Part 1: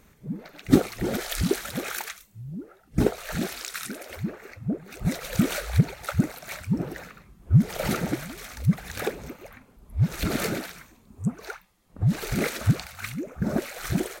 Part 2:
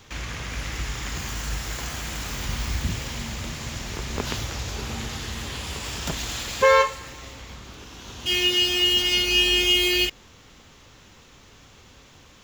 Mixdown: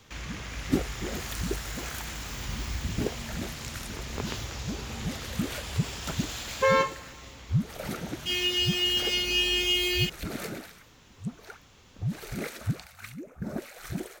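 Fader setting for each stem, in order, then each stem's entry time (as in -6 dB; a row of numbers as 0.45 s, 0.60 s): -8.5 dB, -6.0 dB; 0.00 s, 0.00 s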